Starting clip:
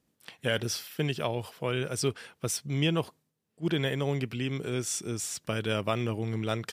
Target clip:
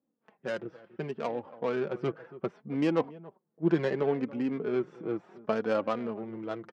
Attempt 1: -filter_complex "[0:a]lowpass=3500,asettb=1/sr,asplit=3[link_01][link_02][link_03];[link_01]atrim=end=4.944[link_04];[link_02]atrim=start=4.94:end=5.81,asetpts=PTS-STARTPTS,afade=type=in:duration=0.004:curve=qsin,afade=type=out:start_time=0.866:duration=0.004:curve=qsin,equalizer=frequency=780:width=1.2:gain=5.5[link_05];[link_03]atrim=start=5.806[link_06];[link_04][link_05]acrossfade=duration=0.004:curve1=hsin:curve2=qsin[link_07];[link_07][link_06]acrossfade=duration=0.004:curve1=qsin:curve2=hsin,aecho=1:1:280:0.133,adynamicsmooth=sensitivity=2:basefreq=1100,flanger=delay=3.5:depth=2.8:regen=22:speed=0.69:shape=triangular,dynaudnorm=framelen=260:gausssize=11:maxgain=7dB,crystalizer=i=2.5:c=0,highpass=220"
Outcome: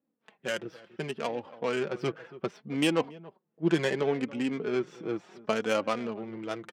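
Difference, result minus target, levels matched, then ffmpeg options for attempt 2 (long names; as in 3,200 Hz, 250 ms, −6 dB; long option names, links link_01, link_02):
4,000 Hz band +10.0 dB
-filter_complex "[0:a]lowpass=1500,asettb=1/sr,asplit=3[link_01][link_02][link_03];[link_01]atrim=end=4.944[link_04];[link_02]atrim=start=4.94:end=5.81,asetpts=PTS-STARTPTS,afade=type=in:duration=0.004:curve=qsin,afade=type=out:start_time=0.866:duration=0.004:curve=qsin,equalizer=frequency=780:width=1.2:gain=5.5[link_05];[link_03]atrim=start=5.806[link_06];[link_04][link_05]acrossfade=duration=0.004:curve1=hsin:curve2=qsin[link_07];[link_07][link_06]acrossfade=duration=0.004:curve1=qsin:curve2=hsin,aecho=1:1:280:0.133,adynamicsmooth=sensitivity=2:basefreq=1100,flanger=delay=3.5:depth=2.8:regen=22:speed=0.69:shape=triangular,dynaudnorm=framelen=260:gausssize=11:maxgain=7dB,crystalizer=i=2.5:c=0,highpass=220"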